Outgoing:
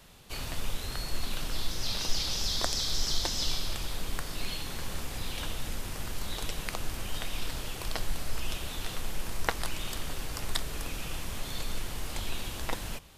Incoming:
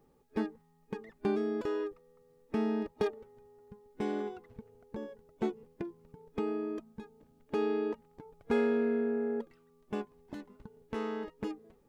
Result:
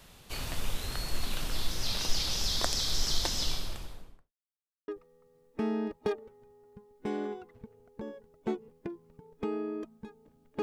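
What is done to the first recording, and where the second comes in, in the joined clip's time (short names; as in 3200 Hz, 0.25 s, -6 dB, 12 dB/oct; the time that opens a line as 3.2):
outgoing
3.32–4.32 studio fade out
4.32–4.88 mute
4.88 switch to incoming from 1.83 s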